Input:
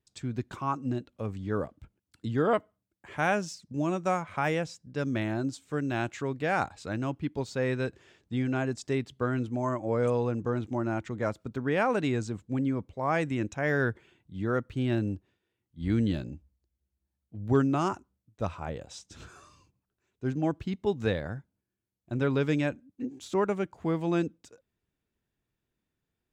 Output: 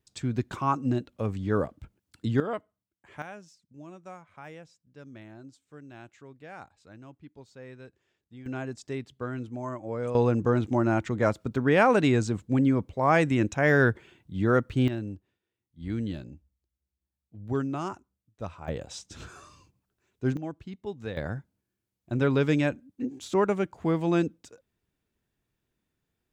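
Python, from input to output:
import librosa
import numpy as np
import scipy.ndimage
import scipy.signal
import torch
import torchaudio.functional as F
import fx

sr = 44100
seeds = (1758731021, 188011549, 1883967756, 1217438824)

y = fx.gain(x, sr, db=fx.steps((0.0, 4.5), (2.4, -7.0), (3.22, -16.5), (8.46, -5.0), (10.15, 6.0), (14.88, -5.0), (18.68, 4.0), (20.37, -8.0), (21.17, 3.0)))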